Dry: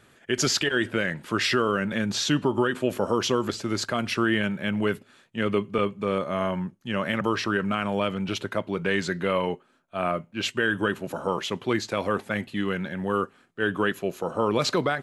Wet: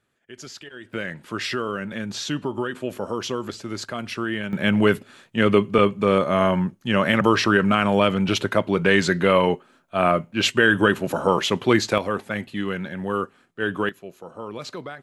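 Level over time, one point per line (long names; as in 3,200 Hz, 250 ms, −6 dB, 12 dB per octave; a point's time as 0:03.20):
−16 dB
from 0:00.93 −3.5 dB
from 0:04.53 +7.5 dB
from 0:11.98 +0.5 dB
from 0:13.89 −10.5 dB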